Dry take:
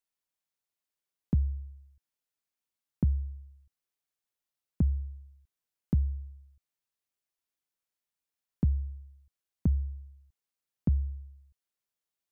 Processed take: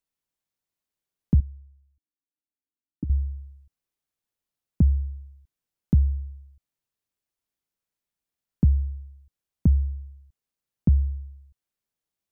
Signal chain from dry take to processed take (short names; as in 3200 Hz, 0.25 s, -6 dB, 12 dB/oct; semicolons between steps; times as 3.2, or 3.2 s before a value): 1.4–3.1 vocal tract filter u; low shelf 410 Hz +8 dB